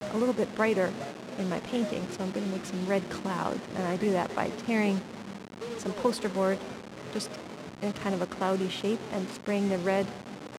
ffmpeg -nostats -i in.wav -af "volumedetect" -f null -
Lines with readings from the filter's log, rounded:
mean_volume: -30.7 dB
max_volume: -12.9 dB